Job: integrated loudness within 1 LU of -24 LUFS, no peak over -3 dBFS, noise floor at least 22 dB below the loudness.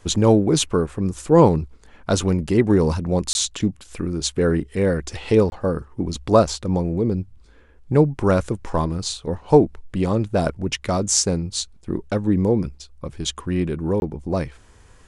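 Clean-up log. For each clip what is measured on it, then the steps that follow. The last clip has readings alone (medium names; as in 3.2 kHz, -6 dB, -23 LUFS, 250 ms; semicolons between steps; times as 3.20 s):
dropouts 3; longest dropout 21 ms; loudness -21.0 LUFS; peak level -2.0 dBFS; loudness target -24.0 LUFS
-> interpolate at 3.33/5.50/14.00 s, 21 ms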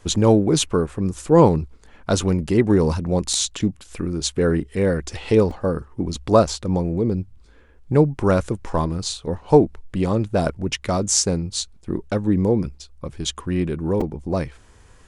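dropouts 0; loudness -21.0 LUFS; peak level -2.0 dBFS; loudness target -24.0 LUFS
-> trim -3 dB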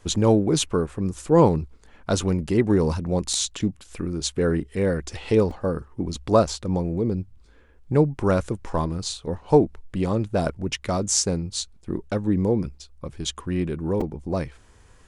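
loudness -24.0 LUFS; peak level -5.0 dBFS; noise floor -53 dBFS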